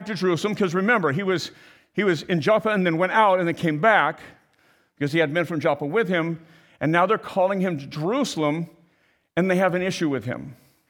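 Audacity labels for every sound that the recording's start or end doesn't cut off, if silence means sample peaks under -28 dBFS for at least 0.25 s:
1.980000	4.110000	sound
5.010000	6.350000	sound
6.810000	8.640000	sound
9.370000	10.440000	sound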